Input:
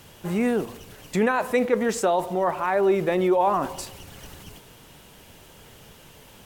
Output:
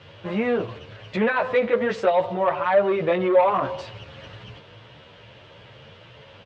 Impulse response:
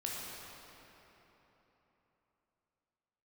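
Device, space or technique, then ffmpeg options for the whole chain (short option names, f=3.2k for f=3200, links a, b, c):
barber-pole flanger into a guitar amplifier: -filter_complex "[0:a]asplit=2[a][b];[b]adelay=10.9,afreqshift=2.4[c];[a][c]amix=inputs=2:normalize=1,asoftclip=type=tanh:threshold=-18dB,highpass=99,equalizer=f=110:t=q:w=4:g=9,equalizer=f=170:t=q:w=4:g=-6,equalizer=f=260:t=q:w=4:g=-9,equalizer=f=380:t=q:w=4:g=-5,equalizer=f=560:t=q:w=4:g=5,equalizer=f=790:t=q:w=4:g=-5,lowpass=f=3.8k:w=0.5412,lowpass=f=3.8k:w=1.3066,volume=7dB"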